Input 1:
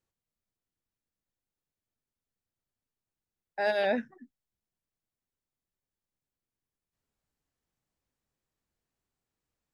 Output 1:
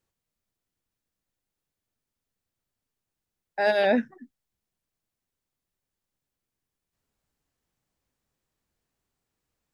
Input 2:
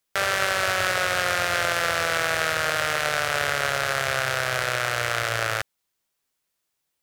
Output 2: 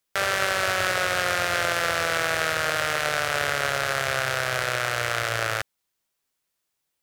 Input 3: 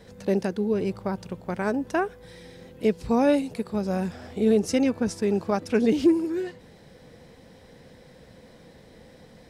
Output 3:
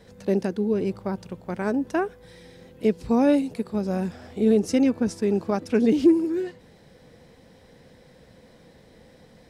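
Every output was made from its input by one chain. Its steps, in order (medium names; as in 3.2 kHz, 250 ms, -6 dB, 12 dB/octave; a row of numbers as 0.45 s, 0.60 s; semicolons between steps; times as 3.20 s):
dynamic bell 280 Hz, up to +5 dB, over -33 dBFS, Q 1.1; normalise loudness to -24 LUFS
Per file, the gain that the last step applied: +5.0 dB, -1.0 dB, -2.0 dB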